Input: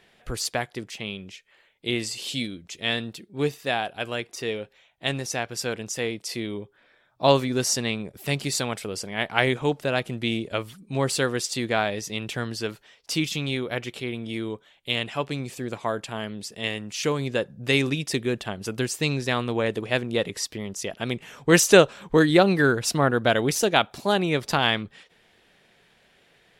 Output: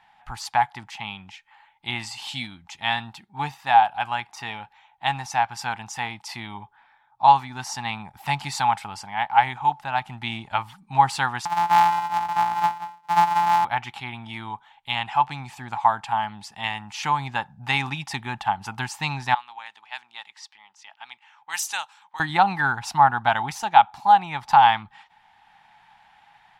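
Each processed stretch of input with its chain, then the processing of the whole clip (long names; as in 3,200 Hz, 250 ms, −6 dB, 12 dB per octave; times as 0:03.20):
0:11.45–0:13.65: samples sorted by size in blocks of 256 samples + high-pass filter 190 Hz + single-tap delay 182 ms −13 dB
0:19.34–0:22.20: high-pass filter 250 Hz 6 dB per octave + low-pass that shuts in the quiet parts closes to 2,300 Hz, open at −15 dBFS + first difference
whole clip: parametric band 850 Hz +15 dB 0.3 octaves; automatic gain control gain up to 4 dB; drawn EQ curve 130 Hz 0 dB, 240 Hz −5 dB, 490 Hz −21 dB, 810 Hz +10 dB, 10,000 Hz −6 dB; level −6 dB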